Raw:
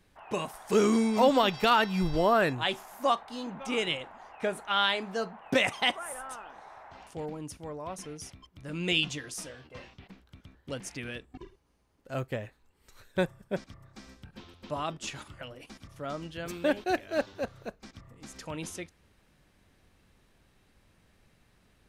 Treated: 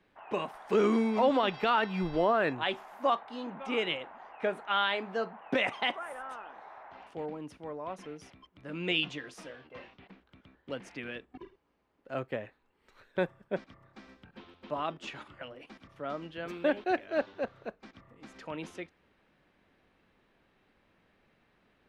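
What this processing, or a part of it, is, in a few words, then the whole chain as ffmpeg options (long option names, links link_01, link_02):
DJ mixer with the lows and highs turned down: -filter_complex "[0:a]acrossover=split=190 3600:gain=0.251 1 0.112[link_01][link_02][link_03];[link_01][link_02][link_03]amix=inputs=3:normalize=0,alimiter=limit=-17dB:level=0:latency=1:release=30"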